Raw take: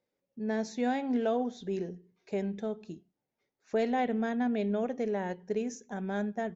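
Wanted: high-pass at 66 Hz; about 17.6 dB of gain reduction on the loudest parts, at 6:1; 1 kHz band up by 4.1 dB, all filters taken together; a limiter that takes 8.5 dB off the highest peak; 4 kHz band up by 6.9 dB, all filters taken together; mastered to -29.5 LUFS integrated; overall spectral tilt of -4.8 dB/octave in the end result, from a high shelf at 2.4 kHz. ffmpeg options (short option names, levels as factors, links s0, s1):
-af "highpass=66,equalizer=f=1000:t=o:g=5.5,highshelf=f=2400:g=5,equalizer=f=4000:t=o:g=4,acompressor=threshold=0.00708:ratio=6,volume=7.94,alimiter=limit=0.106:level=0:latency=1"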